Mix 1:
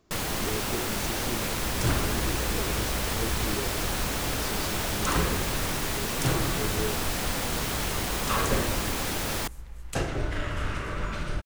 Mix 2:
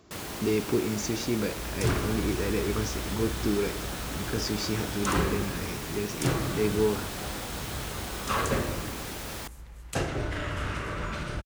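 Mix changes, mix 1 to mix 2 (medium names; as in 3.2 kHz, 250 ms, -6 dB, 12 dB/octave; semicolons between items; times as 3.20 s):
speech +8.5 dB; first sound -7.5 dB; master: add high-pass 50 Hz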